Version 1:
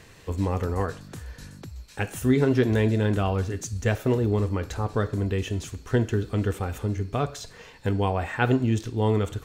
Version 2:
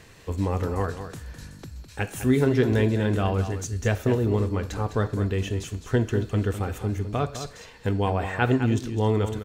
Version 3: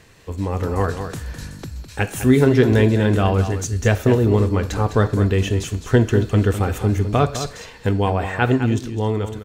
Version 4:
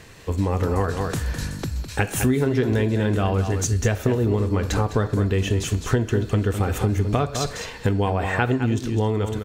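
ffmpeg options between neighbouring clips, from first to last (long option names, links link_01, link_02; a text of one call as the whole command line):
ffmpeg -i in.wav -af "aecho=1:1:207:0.316" out.wav
ffmpeg -i in.wav -af "dynaudnorm=framelen=170:gausssize=9:maxgain=11.5dB" out.wav
ffmpeg -i in.wav -af "acompressor=threshold=-22dB:ratio=6,volume=4.5dB" out.wav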